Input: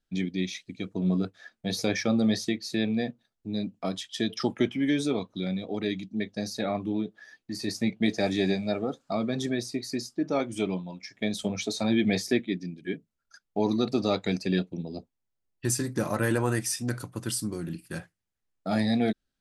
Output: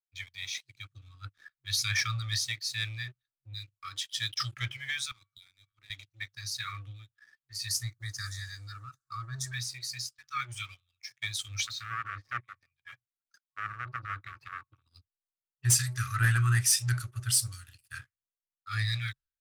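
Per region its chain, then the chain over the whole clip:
0:05.11–0:05.90: hum removal 228.7 Hz, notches 10 + downward compressor, threshold −36 dBFS + multiband upward and downward expander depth 70%
0:07.68–0:09.54: Butterworth band-reject 2,800 Hz, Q 0.96 + high-shelf EQ 8,400 Hz +11.5 dB
0:11.64–0:14.84: treble cut that deepens with the level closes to 980 Hz, closed at −22.5 dBFS + saturating transformer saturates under 1,200 Hz
0:17.47–0:17.88: high-pass filter 58 Hz + notch filter 2,200 Hz, Q 7.7 + multiband upward and downward compressor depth 40%
whole clip: brick-wall band-stop 130–1,100 Hz; leveller curve on the samples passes 2; multiband upward and downward expander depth 70%; level −5.5 dB

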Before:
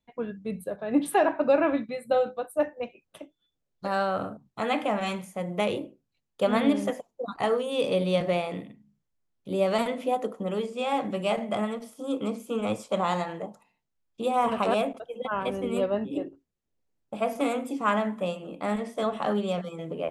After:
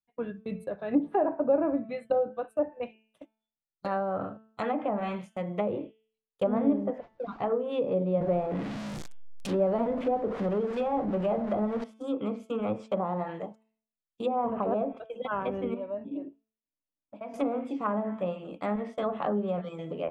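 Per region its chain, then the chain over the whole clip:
0:06.98–0:07.52: converter with a step at zero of −41.5 dBFS + head-to-tape spacing loss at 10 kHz 29 dB + notch filter 1,900 Hz, Q 18
0:08.21–0:11.84: converter with a step at zero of −29 dBFS + high-shelf EQ 5,200 Hz +9 dB
0:15.74–0:17.34: downward compressor 2 to 1, threshold −50 dBFS + high-frequency loss of the air 170 metres + hollow resonant body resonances 280/610/950/2,300 Hz, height 12 dB, ringing for 50 ms
whole clip: noise gate −40 dBFS, range −19 dB; hum removal 220.2 Hz, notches 16; treble cut that deepens with the level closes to 740 Hz, closed at −22 dBFS; level −1.5 dB

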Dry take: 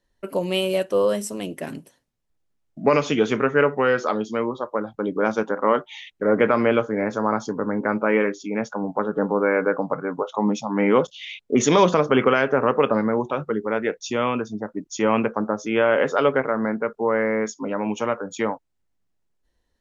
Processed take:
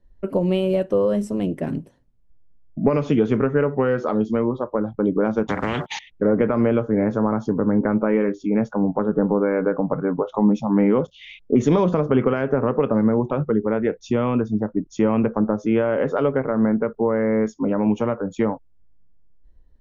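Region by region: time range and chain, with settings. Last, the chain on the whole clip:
0:05.47–0:05.99: noise gate −43 dBFS, range −37 dB + high-pass filter 150 Hz + every bin compressed towards the loudest bin 10 to 1
whole clip: downward compressor 3 to 1, threshold −21 dBFS; spectral tilt −4 dB per octave

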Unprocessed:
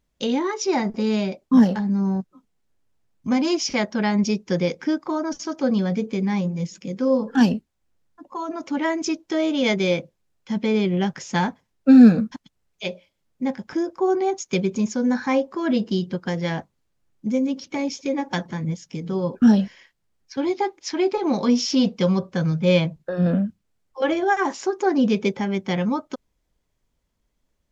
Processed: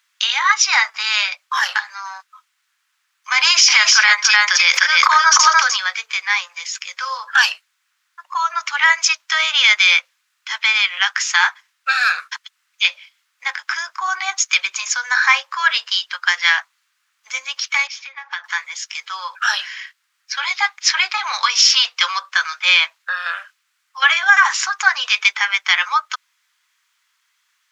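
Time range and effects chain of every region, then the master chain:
0:03.38–0:05.77: single-tap delay 301 ms −5 dB + envelope flattener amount 100%
0:17.87–0:18.44: downward compressor 8 to 1, threshold −33 dBFS + high-frequency loss of the air 170 metres
whole clip: Butterworth high-pass 1,200 Hz 36 dB per octave; high-shelf EQ 5,000 Hz −7.5 dB; boost into a limiter +21.5 dB; level −1 dB

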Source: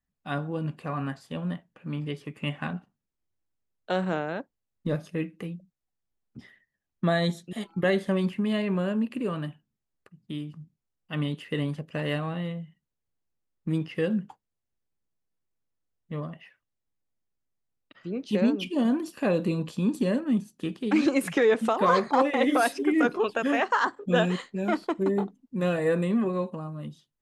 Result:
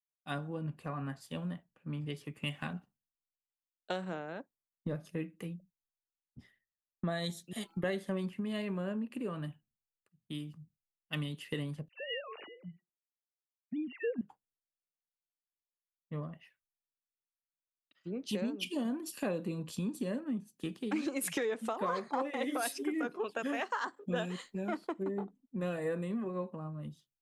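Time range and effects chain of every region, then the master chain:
0:11.88–0:14.21: three sine waves on the formant tracks + hum removal 354.7 Hz, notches 2 + all-pass dispersion lows, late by 55 ms, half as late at 1,700 Hz
whole clip: high-shelf EQ 9,500 Hz +11.5 dB; downward compressor 5 to 1, threshold −32 dBFS; multiband upward and downward expander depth 100%; level −2 dB

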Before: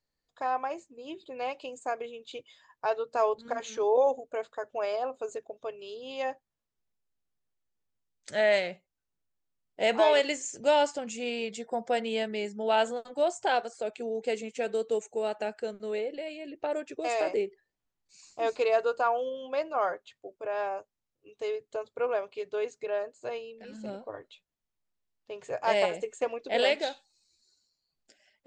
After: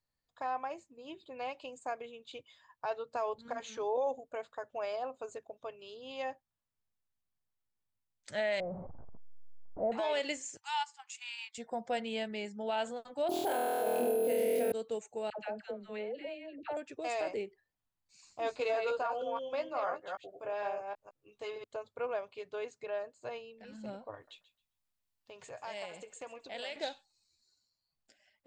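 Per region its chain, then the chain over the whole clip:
0:08.60–0:09.92: converter with a step at zero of −32 dBFS + inverse Chebyshev low-pass filter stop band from 3,600 Hz, stop band 70 dB
0:10.57–0:11.58: Chebyshev high-pass filter 790 Hz, order 10 + transient designer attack −3 dB, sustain −11 dB + high-shelf EQ 6,400 Hz +4.5 dB
0:13.29–0:14.72: parametric band 360 Hz +13.5 dB 2.6 octaves + flutter between parallel walls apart 4.2 metres, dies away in 1.5 s + bad sample-rate conversion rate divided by 4×, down none, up hold
0:15.30–0:16.77: low-pass filter 3,800 Hz + all-pass dispersion lows, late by 91 ms, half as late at 790 Hz
0:18.44–0:21.64: delay that plays each chunk backwards 156 ms, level −4 dB + double-tracking delay 15 ms −7 dB
0:24.14–0:26.76: high-shelf EQ 2,600 Hz +8 dB + downward compressor 2 to 1, threshold −44 dBFS + feedback echo with a high-pass in the loop 134 ms, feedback 20%, high-pass 560 Hz, level −15.5 dB
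whole clip: graphic EQ with 15 bands 100 Hz +6 dB, 400 Hz −5 dB, 1,000 Hz +3 dB, 6,300 Hz −3 dB; brickwall limiter −19 dBFS; dynamic equaliser 1,100 Hz, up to −4 dB, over −39 dBFS, Q 1.1; level −4 dB

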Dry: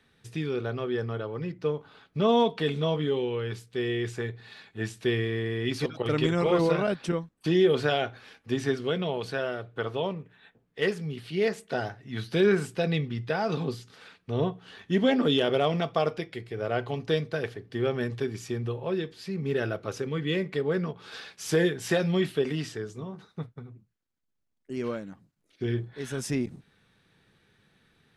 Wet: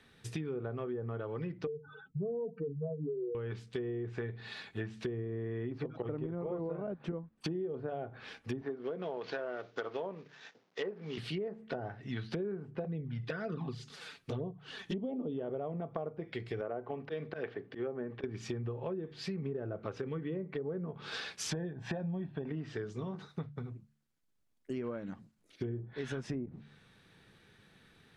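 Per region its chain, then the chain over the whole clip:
0:01.67–0:03.35: expanding power law on the bin magnitudes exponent 3.9 + mains-hum notches 60/120/180/240 Hz
0:08.61–0:11.18: variable-slope delta modulation 32 kbit/s + high-pass filter 280 Hz
0:12.84–0:15.32: flanger swept by the level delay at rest 8.9 ms, full sweep at −22 dBFS + high-shelf EQ 4,300 Hz +9.5 dB
0:16.61–0:18.24: band-pass filter 210–2,300 Hz + volume swells 140 ms
0:21.51–0:22.49: parametric band 3,700 Hz +4 dB 0.28 octaves + comb filter 1.2 ms, depth 60%
whole clip: hum removal 72.94 Hz, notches 3; treble cut that deepens with the level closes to 790 Hz, closed at −25 dBFS; downward compressor 10 to 1, threshold −37 dBFS; level +2.5 dB

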